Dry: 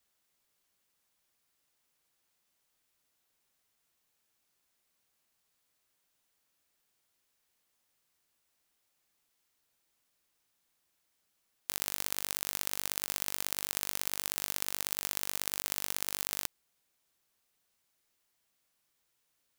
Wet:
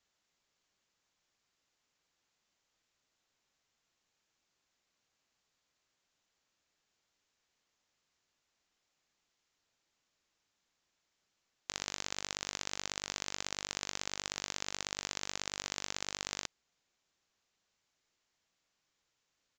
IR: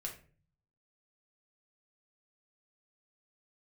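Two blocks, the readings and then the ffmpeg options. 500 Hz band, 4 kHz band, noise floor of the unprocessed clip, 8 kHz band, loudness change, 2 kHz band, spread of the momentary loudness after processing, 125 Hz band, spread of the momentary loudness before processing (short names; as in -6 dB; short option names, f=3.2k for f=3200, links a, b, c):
0.0 dB, 0.0 dB, -78 dBFS, -4.0 dB, -5.0 dB, 0.0 dB, 2 LU, 0.0 dB, 2 LU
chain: -af "aresample=16000,aresample=44100"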